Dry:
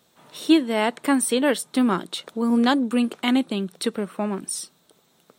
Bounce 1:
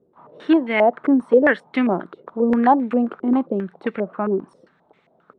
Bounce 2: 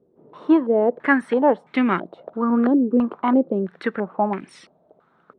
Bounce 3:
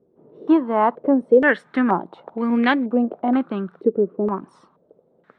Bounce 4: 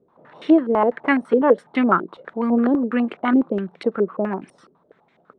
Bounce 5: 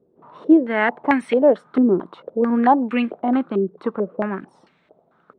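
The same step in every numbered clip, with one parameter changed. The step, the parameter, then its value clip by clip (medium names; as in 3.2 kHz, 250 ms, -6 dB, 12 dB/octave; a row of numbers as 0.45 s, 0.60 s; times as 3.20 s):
step-sequenced low-pass, rate: 7.5 Hz, 3 Hz, 2.1 Hz, 12 Hz, 4.5 Hz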